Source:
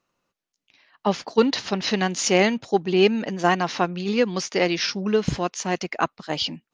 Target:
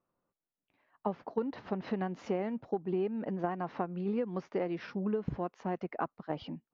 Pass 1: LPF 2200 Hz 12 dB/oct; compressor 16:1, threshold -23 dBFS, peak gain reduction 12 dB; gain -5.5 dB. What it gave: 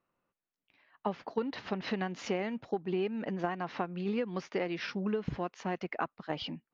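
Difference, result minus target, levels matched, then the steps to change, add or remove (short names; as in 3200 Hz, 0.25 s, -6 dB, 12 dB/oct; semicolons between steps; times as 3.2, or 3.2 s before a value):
2000 Hz band +6.5 dB
change: LPF 1100 Hz 12 dB/oct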